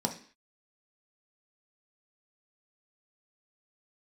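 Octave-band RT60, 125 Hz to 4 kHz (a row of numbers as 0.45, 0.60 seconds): 0.35 s, 0.45 s, 0.45 s, 0.45 s, 0.55 s, can't be measured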